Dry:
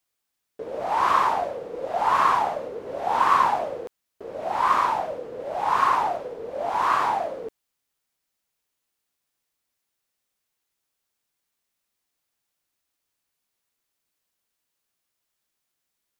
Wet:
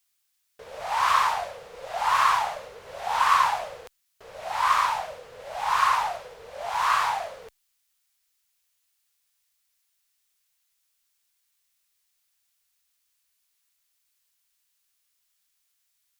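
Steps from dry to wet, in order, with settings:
guitar amp tone stack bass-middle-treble 10-0-10
level +7.5 dB

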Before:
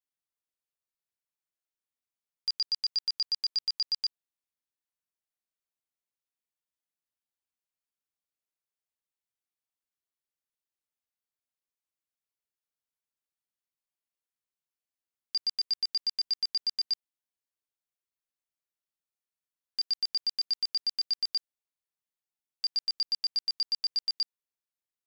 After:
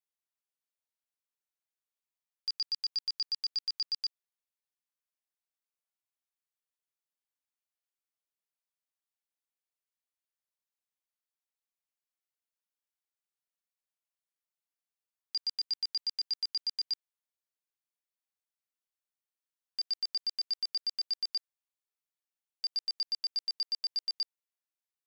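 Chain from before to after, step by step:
high-pass filter 490 Hz 12 dB per octave
level −3.5 dB

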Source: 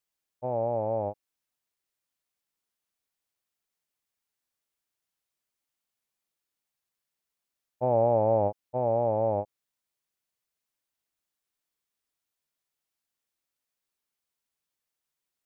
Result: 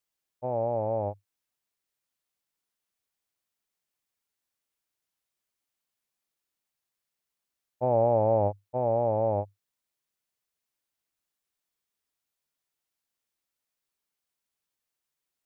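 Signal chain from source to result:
dynamic equaliser 100 Hz, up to +5 dB, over −50 dBFS, Q 7.2

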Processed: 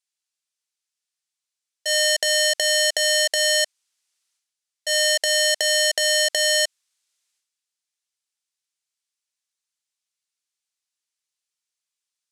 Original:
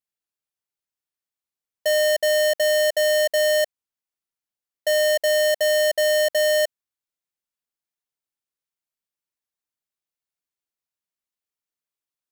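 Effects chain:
meter weighting curve ITU-R 468
transient designer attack −5 dB, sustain +10 dB
level −2 dB

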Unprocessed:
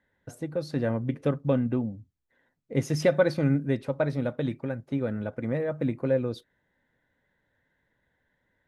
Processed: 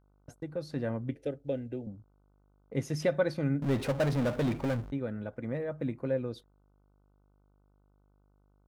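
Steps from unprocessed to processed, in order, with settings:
noise gate −41 dBFS, range −35 dB
hum with harmonics 50 Hz, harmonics 30, −61 dBFS −6 dB per octave
0:01.13–0:01.87: phaser with its sweep stopped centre 450 Hz, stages 4
0:03.62–0:04.92: power curve on the samples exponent 0.5
level −6 dB

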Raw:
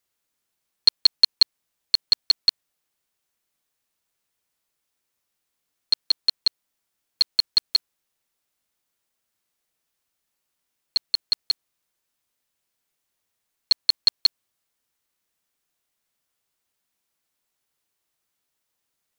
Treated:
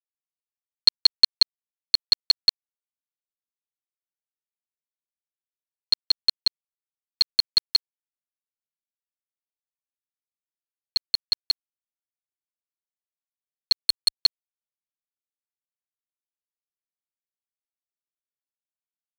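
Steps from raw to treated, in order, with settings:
mains hum 60 Hz, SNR 17 dB
dead-zone distortion −40.5 dBFS
0:13.79–0:14.21: saturating transformer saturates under 2,900 Hz

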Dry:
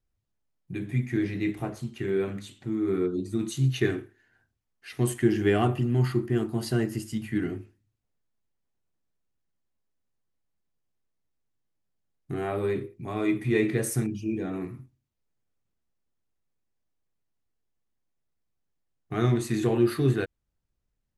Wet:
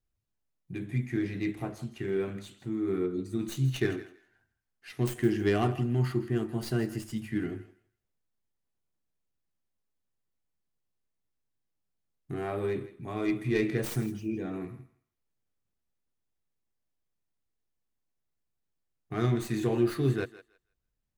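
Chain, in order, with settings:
stylus tracing distortion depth 0.13 ms
feedback echo with a high-pass in the loop 162 ms, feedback 19%, high-pass 560 Hz, level −15 dB
level −3.5 dB

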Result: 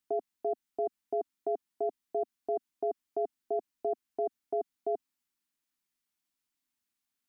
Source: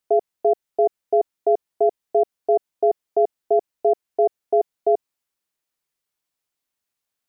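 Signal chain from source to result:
brickwall limiter −14 dBFS, peak gain reduction 4.5 dB
octave-band graphic EQ 125/250/500 Hz −6/+10/−12 dB
level −3.5 dB

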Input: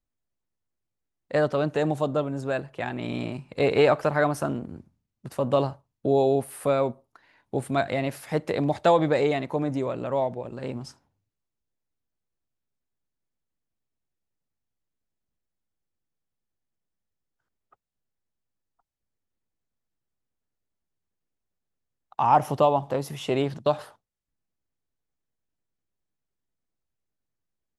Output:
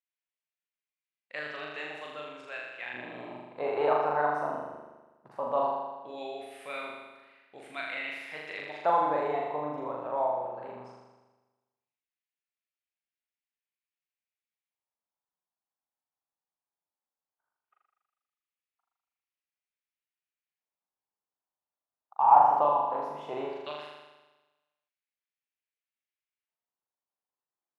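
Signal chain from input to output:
auto-filter band-pass square 0.17 Hz 910–2,400 Hz
flutter between parallel walls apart 6.9 metres, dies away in 1.2 s
level −1 dB

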